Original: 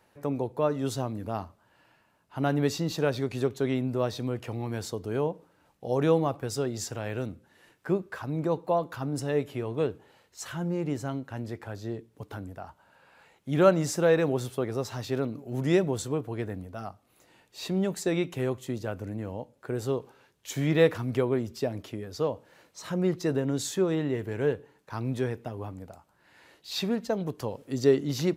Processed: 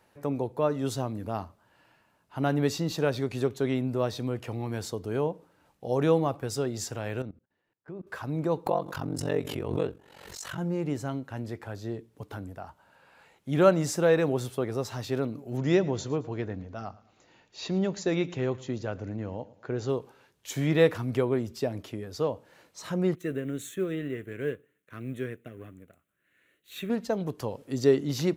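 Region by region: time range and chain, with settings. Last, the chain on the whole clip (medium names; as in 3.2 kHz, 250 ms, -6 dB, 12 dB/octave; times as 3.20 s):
7.22–8.07 s: gate -52 dBFS, range -13 dB + level held to a coarse grid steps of 19 dB + tape spacing loss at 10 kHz 21 dB
8.66–10.58 s: ring modulator 23 Hz + swell ahead of each attack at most 52 dB/s
15.57–19.90 s: brick-wall FIR low-pass 7.3 kHz + feedback delay 111 ms, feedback 41%, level -20 dB
23.15–26.90 s: companding laws mixed up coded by A + bass shelf 140 Hz -9.5 dB + static phaser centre 2.1 kHz, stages 4
whole clip: none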